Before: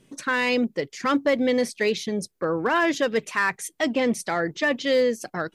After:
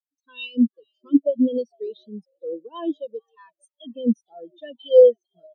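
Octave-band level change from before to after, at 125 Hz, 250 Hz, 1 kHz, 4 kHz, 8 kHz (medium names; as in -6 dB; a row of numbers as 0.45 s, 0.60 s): no reading, +2.5 dB, -18.0 dB, -10.0 dB, under -25 dB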